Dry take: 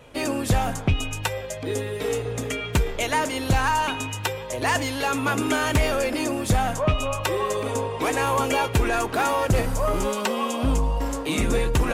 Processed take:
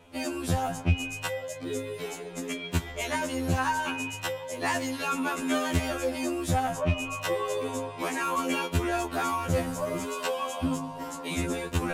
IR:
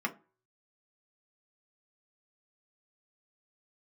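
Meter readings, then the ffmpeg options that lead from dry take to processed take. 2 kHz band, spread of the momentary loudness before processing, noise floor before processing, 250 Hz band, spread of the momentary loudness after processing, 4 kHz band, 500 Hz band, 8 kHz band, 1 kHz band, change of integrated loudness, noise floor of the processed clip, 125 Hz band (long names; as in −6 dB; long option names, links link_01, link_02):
−5.5 dB, 6 LU, −33 dBFS, −4.0 dB, 7 LU, −6.0 dB, −6.0 dB, −6.0 dB, −6.0 dB, −5.5 dB, −41 dBFS, −6.0 dB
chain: -af "afftfilt=real='re*2*eq(mod(b,4),0)':imag='im*2*eq(mod(b,4),0)':win_size=2048:overlap=0.75,volume=-3.5dB"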